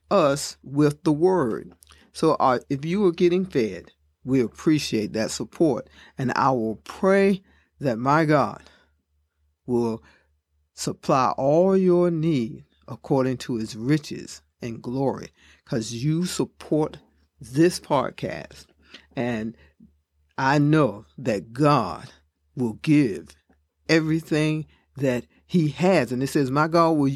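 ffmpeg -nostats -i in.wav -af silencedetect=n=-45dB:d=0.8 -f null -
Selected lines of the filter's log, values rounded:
silence_start: 8.74
silence_end: 9.68 | silence_duration: 0.94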